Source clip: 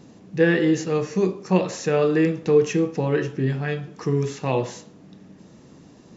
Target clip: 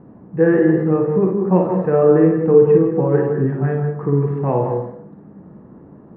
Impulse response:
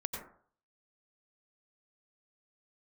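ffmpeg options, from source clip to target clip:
-filter_complex "[0:a]lowpass=f=1400:w=0.5412,lowpass=f=1400:w=1.3066,asplit=2[s0][s1];[1:a]atrim=start_sample=2205,asetrate=39690,aresample=44100,adelay=56[s2];[s1][s2]afir=irnorm=-1:irlink=0,volume=0.596[s3];[s0][s3]amix=inputs=2:normalize=0,volume=1.5"

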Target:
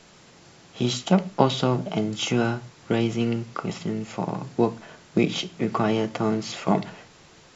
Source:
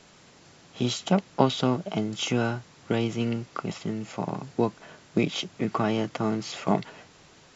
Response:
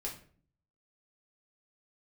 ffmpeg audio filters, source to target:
-filter_complex "[0:a]asplit=2[s0][s1];[1:a]atrim=start_sample=2205,atrim=end_sample=6615[s2];[s1][s2]afir=irnorm=-1:irlink=0,volume=0.447[s3];[s0][s3]amix=inputs=2:normalize=0"

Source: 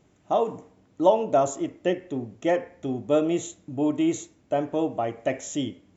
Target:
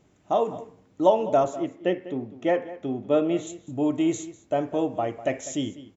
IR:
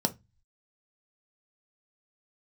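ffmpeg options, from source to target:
-filter_complex "[0:a]asettb=1/sr,asplit=3[s0][s1][s2];[s0]atrim=end=1.444[s3];[s1]atrim=start=1.44:end=3.47,asetpts=PTS-STARTPTS,afade=t=in:d=0.004:c=qsin,afade=t=out:st=2.026:d=0.004:c=qsin,highpass=120,lowpass=3900[s4];[s2]atrim=start=3.466[s5];[s3][s4]acrossfade=d=0.004:c1=hsin:c2=qsin[s6];[s6][s5]acrossfade=d=0.004:c1=qsin:c2=hsin,asplit=2[s7][s8];[s8]adelay=198.3,volume=0.158,highshelf=f=4000:g=-4.46[s9];[s7][s9]amix=inputs=2:normalize=0"

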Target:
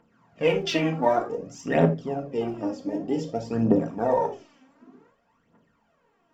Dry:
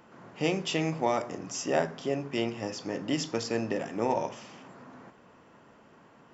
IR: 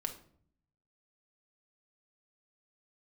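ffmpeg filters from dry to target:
-filter_complex "[0:a]afwtdn=0.0158,aphaser=in_gain=1:out_gain=1:delay=3.9:decay=0.71:speed=0.54:type=triangular[s0];[1:a]atrim=start_sample=2205,atrim=end_sample=4410,asetrate=48510,aresample=44100[s1];[s0][s1]afir=irnorm=-1:irlink=0,volume=1.58"

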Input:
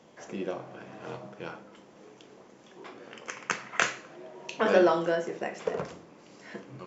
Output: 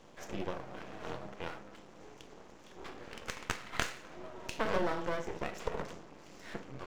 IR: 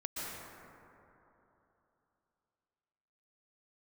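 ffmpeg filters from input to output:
-af "aeval=exprs='max(val(0),0)':c=same,acompressor=threshold=0.0141:ratio=2,volume=1.41"

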